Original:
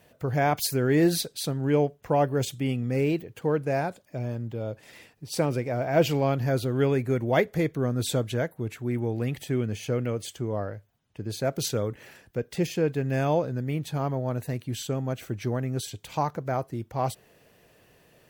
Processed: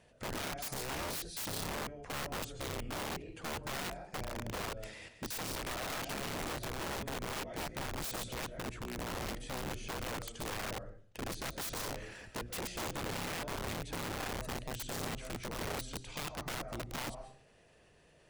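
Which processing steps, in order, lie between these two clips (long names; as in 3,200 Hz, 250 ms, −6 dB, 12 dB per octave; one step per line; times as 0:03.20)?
sub-octave generator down 2 octaves, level −3 dB
downsampling to 22,050 Hz
downward compressor 5 to 1, threshold −35 dBFS, peak gain reduction 17.5 dB
0:11.91–0:13.08: leveller curve on the samples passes 1
output level in coarse steps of 14 dB
mains-hum notches 60/120/180/240/300/360 Hz
on a send at −9.5 dB: convolution reverb RT60 0.50 s, pre-delay 95 ms
on the sum: wrap-around overflow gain 39.5 dB
level +5.5 dB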